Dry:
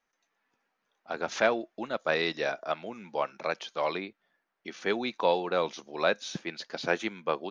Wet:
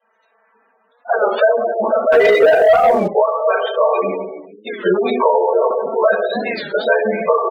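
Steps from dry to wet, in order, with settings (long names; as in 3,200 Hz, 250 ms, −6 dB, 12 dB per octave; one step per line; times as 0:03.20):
low-shelf EQ 260 Hz −6 dB
comb filter 4.5 ms, depth 77%
convolution reverb RT60 1.0 s, pre-delay 3 ms, DRR −11 dB
downward compressor 4 to 1, threshold −10 dBFS, peak gain reduction 13 dB
gate on every frequency bin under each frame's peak −15 dB strong
0:02.12–0:03.09: leveller curve on the samples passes 2
0:05.24–0:05.71: Butterworth low-pass 1,100 Hz 48 dB per octave
wow of a warped record 33 1/3 rpm, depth 160 cents
level −1.5 dB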